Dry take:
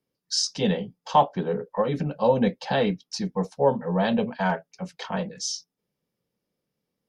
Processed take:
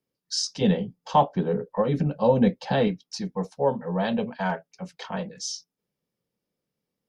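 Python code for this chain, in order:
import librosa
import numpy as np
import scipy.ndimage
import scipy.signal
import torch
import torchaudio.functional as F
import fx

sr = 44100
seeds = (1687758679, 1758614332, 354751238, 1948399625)

y = fx.low_shelf(x, sr, hz=410.0, db=7.0, at=(0.61, 2.88))
y = y * librosa.db_to_amplitude(-2.5)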